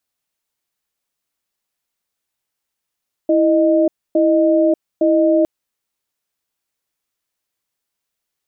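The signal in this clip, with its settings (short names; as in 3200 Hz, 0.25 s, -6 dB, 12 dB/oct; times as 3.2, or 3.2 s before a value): cadence 328 Hz, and 618 Hz, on 0.59 s, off 0.27 s, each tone -13.5 dBFS 2.16 s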